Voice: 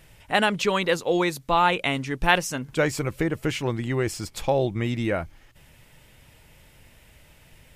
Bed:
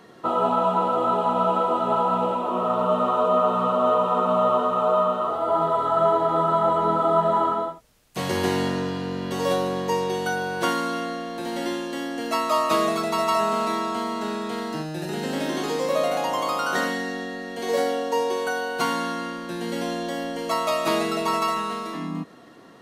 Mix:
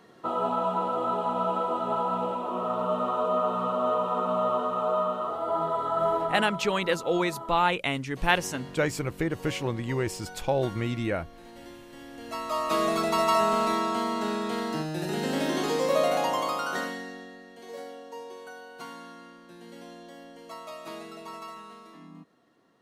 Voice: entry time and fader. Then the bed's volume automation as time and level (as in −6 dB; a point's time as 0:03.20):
6.00 s, −3.5 dB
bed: 0:06.22 −6 dB
0:06.65 −18.5 dB
0:11.83 −18.5 dB
0:13.01 −1 dB
0:16.24 −1 dB
0:17.71 −17.5 dB